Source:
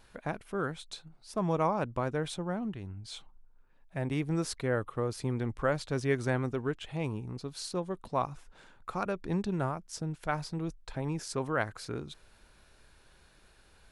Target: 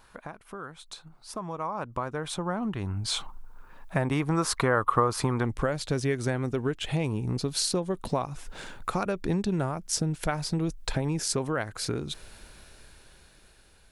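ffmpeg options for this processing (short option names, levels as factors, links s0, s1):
-af "highshelf=f=6800:g=5.5,acompressor=threshold=0.01:ratio=6,asetnsamples=n=441:p=0,asendcmd='4.2 equalizer g 14.5;5.45 equalizer g -3',equalizer=f=1100:w=1.4:g=8.5,dynaudnorm=f=530:g=9:m=5.96"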